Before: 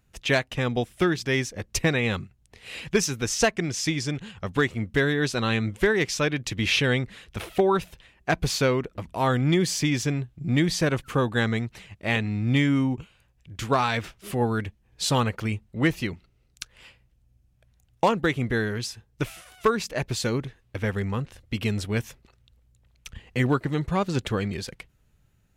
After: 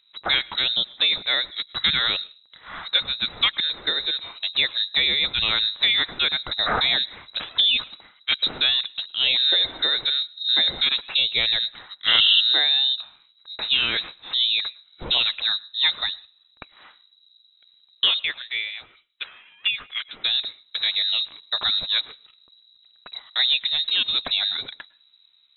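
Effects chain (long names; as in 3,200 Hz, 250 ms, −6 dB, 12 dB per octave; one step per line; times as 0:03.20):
0:18.19–0:20.24: three-way crossover with the lows and the highs turned down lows −20 dB, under 470 Hz, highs −16 dB, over 2,400 Hz
low-pass that shuts in the quiet parts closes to 2,400 Hz, open at −23 dBFS
in parallel at −0.5 dB: brickwall limiter −18.5 dBFS, peak gain reduction 7.5 dB
0:12.07–0:12.41: on the sum: sound drawn into the spectrogram noise 230–1,200 Hz −15 dBFS
on a send at −24 dB: convolution reverb RT60 0.35 s, pre-delay 100 ms
on the sum: voice inversion scrambler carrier 3,900 Hz
level −2.5 dB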